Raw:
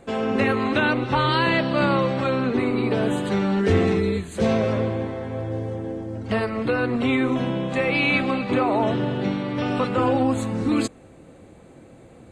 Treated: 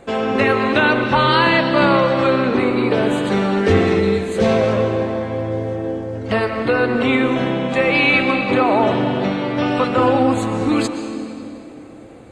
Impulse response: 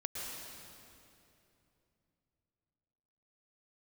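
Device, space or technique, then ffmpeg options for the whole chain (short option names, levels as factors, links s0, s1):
filtered reverb send: -filter_complex "[0:a]asplit=2[s0][s1];[s1]highpass=260,lowpass=7500[s2];[1:a]atrim=start_sample=2205[s3];[s2][s3]afir=irnorm=-1:irlink=0,volume=0.631[s4];[s0][s4]amix=inputs=2:normalize=0,volume=1.41"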